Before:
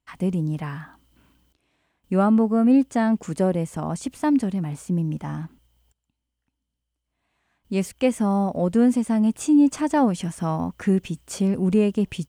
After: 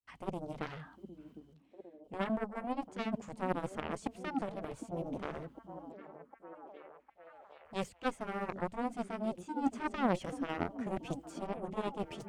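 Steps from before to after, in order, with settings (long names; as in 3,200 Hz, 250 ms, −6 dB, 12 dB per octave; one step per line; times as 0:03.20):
de-essing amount 70%
high-shelf EQ 7,600 Hz −9.5 dB
reversed playback
downward compressor 5 to 1, threshold −27 dBFS, peak gain reduction 12.5 dB
reversed playback
granular cloud 159 ms, grains 14 per second, spray 14 ms, pitch spread up and down by 0 semitones
harmonic generator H 3 −9 dB, 7 −27 dB, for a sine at −19.5 dBFS
on a send: echo through a band-pass that steps 756 ms, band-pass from 260 Hz, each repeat 0.7 octaves, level −6.5 dB
on the sum: level +3 dB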